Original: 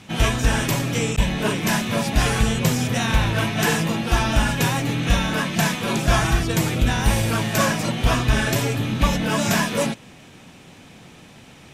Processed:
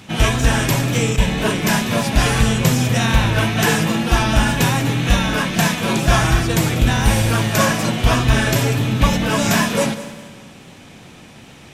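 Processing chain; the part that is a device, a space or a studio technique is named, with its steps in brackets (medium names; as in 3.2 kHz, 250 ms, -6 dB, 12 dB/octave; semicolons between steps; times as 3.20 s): multi-head tape echo (multi-head delay 64 ms, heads first and third, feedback 56%, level -16 dB; wow and flutter 25 cents); trim +3.5 dB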